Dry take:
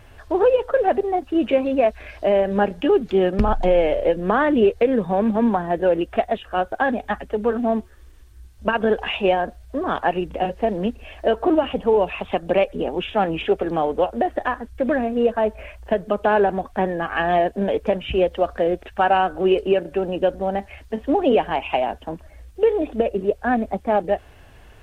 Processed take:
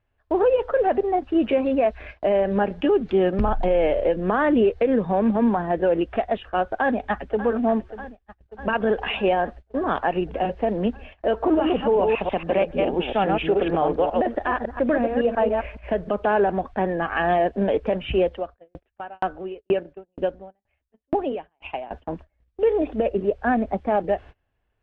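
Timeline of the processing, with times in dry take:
6.68–7.45 echo throw 0.59 s, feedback 75%, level -14.5 dB
11.32–16.11 reverse delay 0.139 s, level -4 dB
18.27–21.91 dB-ramp tremolo decaying 2.1 Hz, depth 28 dB
whole clip: LPF 3200 Hz 12 dB/oct; gate -37 dBFS, range -27 dB; limiter -11.5 dBFS

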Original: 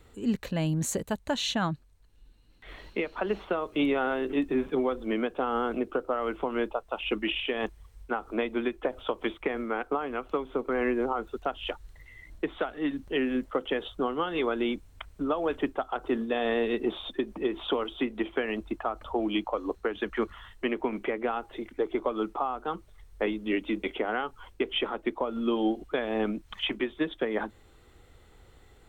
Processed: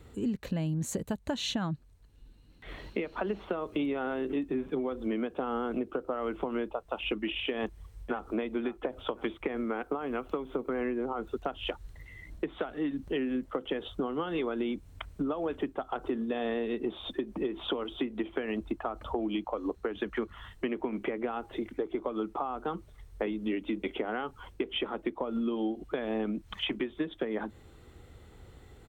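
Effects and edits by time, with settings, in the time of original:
7.55–8.24 echo throw 0.53 s, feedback 25%, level -12 dB
9.74–10.82 high shelf 11000 Hz +7.5 dB
whole clip: HPF 97 Hz 6 dB/oct; low shelf 310 Hz +10.5 dB; compressor, threshold -29 dBFS

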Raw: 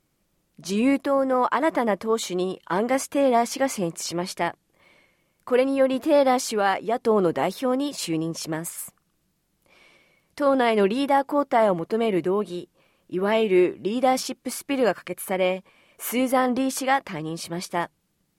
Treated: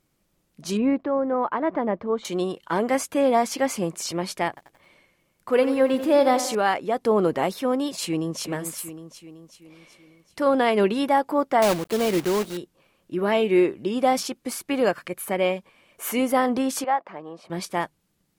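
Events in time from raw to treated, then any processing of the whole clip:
0.77–2.25 tape spacing loss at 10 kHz 38 dB
4.48–6.55 lo-fi delay 89 ms, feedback 55%, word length 8-bit, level -11.5 dB
8–8.41 echo throw 0.38 s, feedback 55%, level -8 dB
11.62–12.58 block floating point 3-bit
16.84–17.5 band-pass 760 Hz, Q 1.3

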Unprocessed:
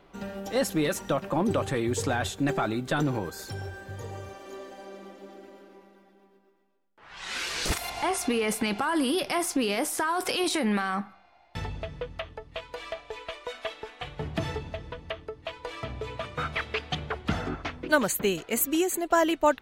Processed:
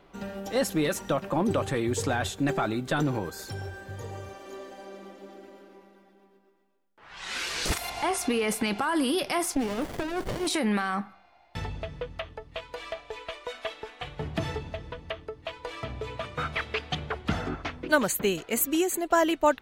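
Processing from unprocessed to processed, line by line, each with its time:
9.55–10.47 running maximum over 33 samples

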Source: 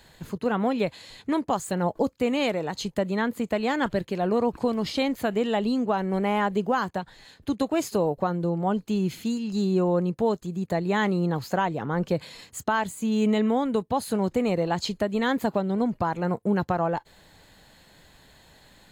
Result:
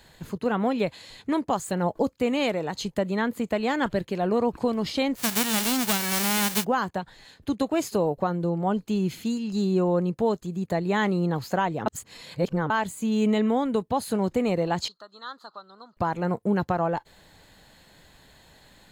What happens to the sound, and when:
5.16–6.63 spectral whitening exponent 0.1
11.86–12.7 reverse
14.88–15.97 double band-pass 2300 Hz, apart 1.7 oct

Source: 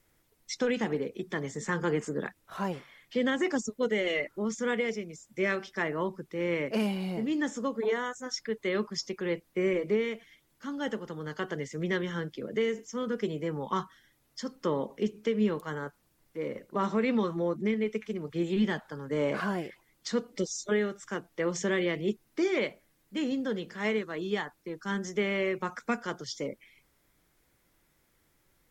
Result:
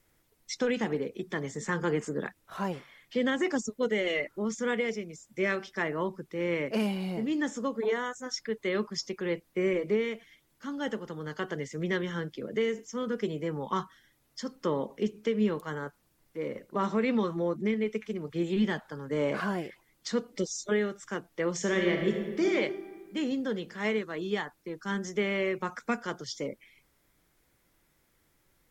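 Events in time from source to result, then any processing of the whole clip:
21.56–22.51 reverb throw, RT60 1.6 s, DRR 2.5 dB

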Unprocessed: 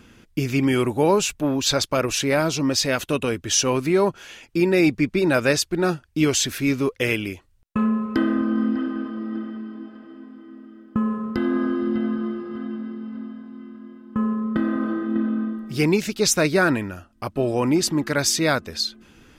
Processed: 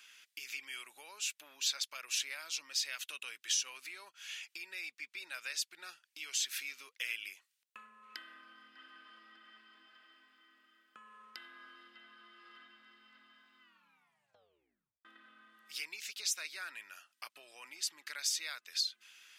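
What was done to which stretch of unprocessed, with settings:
7.29–8.03 dynamic EQ 3200 Hz, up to -6 dB, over -51 dBFS, Q 1
13.61 tape stop 1.44 s
whole clip: compressor 5:1, threshold -31 dBFS; Chebyshev high-pass 2500 Hz, order 2

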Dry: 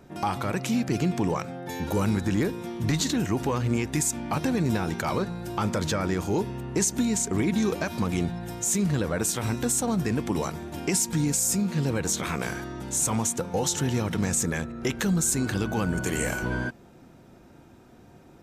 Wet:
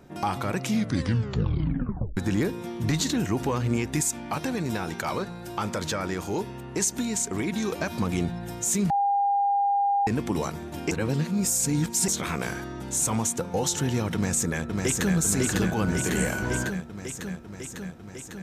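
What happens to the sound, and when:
0.64 tape stop 1.53 s
4.01–7.79 low shelf 370 Hz -6 dB
8.9–10.07 bleep 804 Hz -20 dBFS
10.91–12.08 reverse
14.14–15.15 echo throw 0.55 s, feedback 75%, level -2.5 dB

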